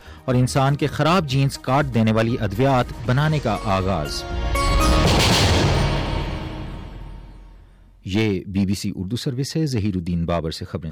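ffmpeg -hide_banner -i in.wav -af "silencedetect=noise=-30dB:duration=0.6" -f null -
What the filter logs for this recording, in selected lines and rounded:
silence_start: 7.24
silence_end: 8.06 | silence_duration: 0.82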